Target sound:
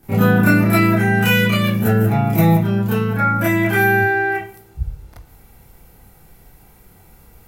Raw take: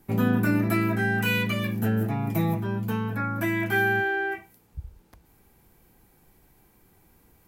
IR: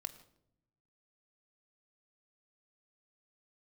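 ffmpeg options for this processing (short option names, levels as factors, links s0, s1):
-filter_complex "[0:a]asplit=2[s0][s1];[1:a]atrim=start_sample=2205,adelay=30[s2];[s1][s2]afir=irnorm=-1:irlink=0,volume=3.16[s3];[s0][s3]amix=inputs=2:normalize=0,volume=1.41"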